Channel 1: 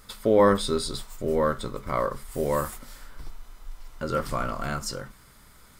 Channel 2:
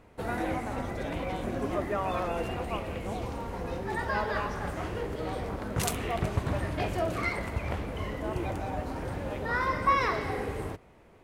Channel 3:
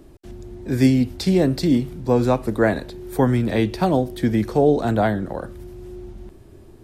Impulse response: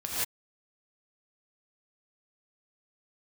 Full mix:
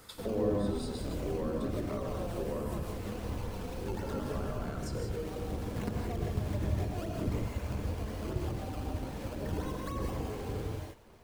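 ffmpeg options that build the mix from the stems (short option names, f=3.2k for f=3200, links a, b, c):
-filter_complex "[0:a]volume=-4dB,asplit=2[a][b];[b]volume=-11dB[c];[1:a]acrusher=samples=17:mix=1:aa=0.000001:lfo=1:lforange=17:lforate=3.9,aphaser=in_gain=1:out_gain=1:delay=4.6:decay=0.38:speed=1.8:type=sinusoidal,volume=-9dB,asplit=2[d][e];[e]volume=-3.5dB[f];[a]highpass=390,acompressor=threshold=-32dB:ratio=6,volume=0dB[g];[3:a]atrim=start_sample=2205[h];[c][f]amix=inputs=2:normalize=0[i];[i][h]afir=irnorm=-1:irlink=0[j];[d][g][j]amix=inputs=3:normalize=0,acrossover=split=460[k][l];[l]acompressor=threshold=-45dB:ratio=6[m];[k][m]amix=inputs=2:normalize=0"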